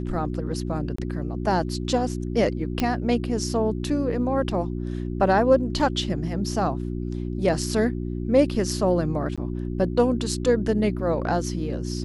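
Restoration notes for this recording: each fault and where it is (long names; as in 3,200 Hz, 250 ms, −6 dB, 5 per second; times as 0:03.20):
mains hum 60 Hz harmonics 6 −29 dBFS
0:00.96–0:00.98: drop-out 24 ms
0:02.80: click −10 dBFS
0:09.36–0:09.38: drop-out 16 ms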